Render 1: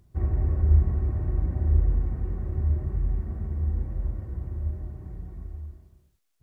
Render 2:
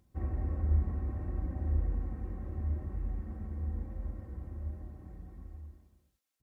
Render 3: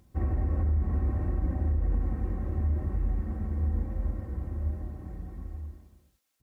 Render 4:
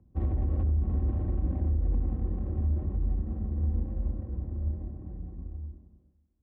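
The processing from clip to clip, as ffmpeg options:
ffmpeg -i in.wav -af "highpass=frequency=87:poles=1,aecho=1:1:3.8:0.5,volume=-5.5dB" out.wav
ffmpeg -i in.wav -af "alimiter=level_in=4dB:limit=-24dB:level=0:latency=1:release=65,volume=-4dB,volume=8dB" out.wav
ffmpeg -i in.wav -filter_complex "[0:a]acrossover=split=130|370[link_01][link_02][link_03];[link_03]adynamicsmooth=sensitivity=4:basefreq=580[link_04];[link_01][link_02][link_04]amix=inputs=3:normalize=0,aecho=1:1:283|566|849:0.0631|0.0328|0.0171" out.wav

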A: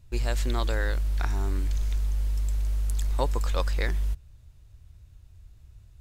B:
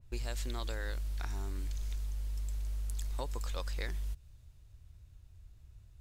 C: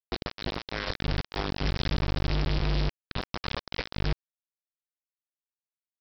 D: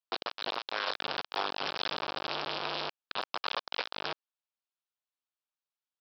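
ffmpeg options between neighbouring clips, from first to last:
ffmpeg -i in.wav -af "acompressor=threshold=-29dB:ratio=5,adynamicequalizer=threshold=0.00141:dfrequency=2600:dqfactor=0.7:tfrequency=2600:tqfactor=0.7:attack=5:release=100:ratio=0.375:range=2.5:mode=boostabove:tftype=highshelf,volume=-5dB" out.wav
ffmpeg -i in.wav -af "alimiter=level_in=9dB:limit=-24dB:level=0:latency=1:release=322,volume=-9dB,aresample=11025,acrusher=bits=5:mix=0:aa=0.000001,aresample=44100,volume=9dB" out.wav
ffmpeg -i in.wav -af "highpass=760,lowpass=3700,equalizer=frequency=2000:width=2.8:gain=-10,volume=5.5dB" out.wav

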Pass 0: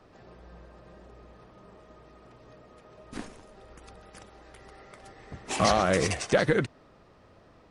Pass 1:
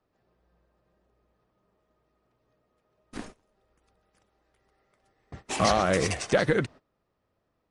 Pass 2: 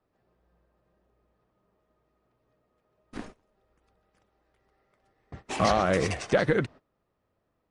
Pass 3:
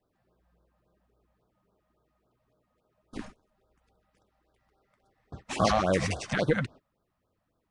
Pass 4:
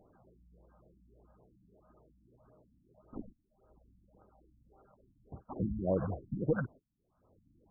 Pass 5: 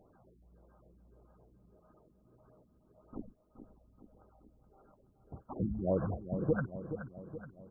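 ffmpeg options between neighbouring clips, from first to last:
ffmpeg -i in.wav -af "agate=range=-20dB:threshold=-43dB:ratio=16:detection=peak" out.wav
ffmpeg -i in.wav -af "highshelf=frequency=5300:gain=-9.5" out.wav
ffmpeg -i in.wav -af "afftfilt=real='re*(1-between(b*sr/1024,330*pow(2400/330,0.5+0.5*sin(2*PI*3.6*pts/sr))/1.41,330*pow(2400/330,0.5+0.5*sin(2*PI*3.6*pts/sr))*1.41))':imag='im*(1-between(b*sr/1024,330*pow(2400/330,0.5+0.5*sin(2*PI*3.6*pts/sr))/1.41,330*pow(2400/330,0.5+0.5*sin(2*PI*3.6*pts/sr))*1.41))':win_size=1024:overlap=0.75" out.wav
ffmpeg -i in.wav -af "acompressor=mode=upward:threshold=-45dB:ratio=2.5,afftfilt=real='re*lt(b*sr/1024,300*pow(1700/300,0.5+0.5*sin(2*PI*1.7*pts/sr)))':imag='im*lt(b*sr/1024,300*pow(1700/300,0.5+0.5*sin(2*PI*1.7*pts/sr)))':win_size=1024:overlap=0.75,volume=-4.5dB" out.wav
ffmpeg -i in.wav -af "aecho=1:1:424|848|1272|1696|2120|2544:0.316|0.171|0.0922|0.0498|0.0269|0.0145" out.wav

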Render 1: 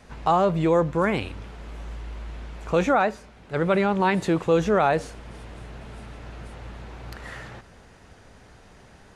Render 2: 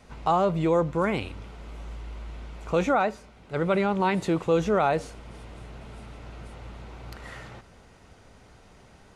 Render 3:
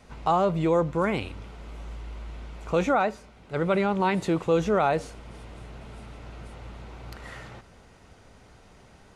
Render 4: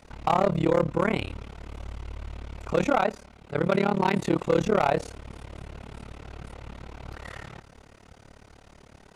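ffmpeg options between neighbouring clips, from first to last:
ffmpeg -i in.wav -af "bandreject=frequency=1700:width=9.6,volume=-2.5dB" out.wav
ffmpeg -i in.wav -af anull out.wav
ffmpeg -i in.wav -af "tremolo=f=36:d=1,volume=19.5dB,asoftclip=hard,volume=-19.5dB,volume=5dB" out.wav

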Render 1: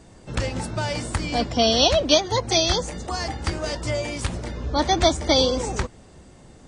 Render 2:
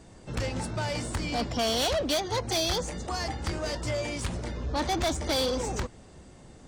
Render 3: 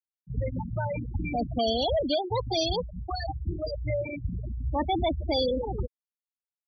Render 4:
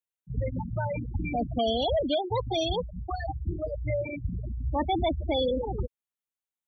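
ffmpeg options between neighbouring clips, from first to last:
ffmpeg -i in.wav -af "asoftclip=type=tanh:threshold=-21dB,volume=-2.5dB" out.wav
ffmpeg -i in.wav -af "aeval=exprs='val(0)+0.00282*(sin(2*PI*60*n/s)+sin(2*PI*2*60*n/s)/2+sin(2*PI*3*60*n/s)/3+sin(2*PI*4*60*n/s)/4+sin(2*PI*5*60*n/s)/5)':channel_layout=same,afftfilt=real='re*gte(hypot(re,im),0.1)':imag='im*gte(hypot(re,im),0.1)':win_size=1024:overlap=0.75,volume=2.5dB" out.wav
ffmpeg -i in.wav -af "asuperstop=centerf=4900:order=4:qfactor=2.3" out.wav

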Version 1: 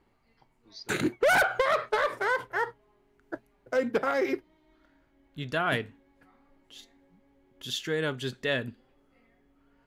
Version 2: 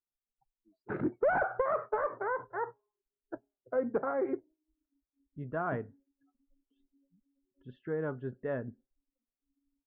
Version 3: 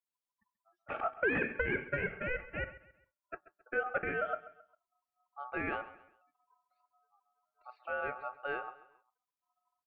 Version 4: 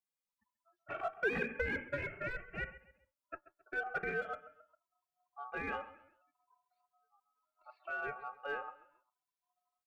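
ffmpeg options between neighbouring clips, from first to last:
ffmpeg -i in.wav -af "afftdn=noise_reduction=35:noise_floor=-47,lowpass=frequency=1300:width=0.5412,lowpass=frequency=1300:width=1.3066,volume=-4dB" out.wav
ffmpeg -i in.wav -af "aeval=exprs='val(0)*sin(2*PI*1000*n/s)':channel_layout=same,aecho=1:1:134|268|402:0.141|0.0537|0.0204" out.wav
ffmpeg -i in.wav -filter_complex "[0:a]asplit=2[link_01][link_02];[link_02]volume=29.5dB,asoftclip=hard,volume=-29.5dB,volume=-6dB[link_03];[link_01][link_03]amix=inputs=2:normalize=0,asplit=2[link_04][link_05];[link_05]adelay=2.1,afreqshift=0.72[link_06];[link_04][link_06]amix=inputs=2:normalize=1,volume=-3.5dB" out.wav

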